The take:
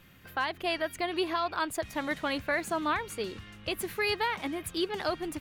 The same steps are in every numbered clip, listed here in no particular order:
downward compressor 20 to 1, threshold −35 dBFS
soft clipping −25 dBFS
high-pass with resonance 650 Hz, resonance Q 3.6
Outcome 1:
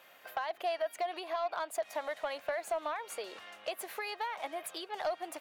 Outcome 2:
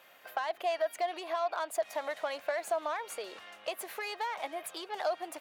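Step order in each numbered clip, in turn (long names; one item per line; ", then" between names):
downward compressor, then high-pass with resonance, then soft clipping
soft clipping, then downward compressor, then high-pass with resonance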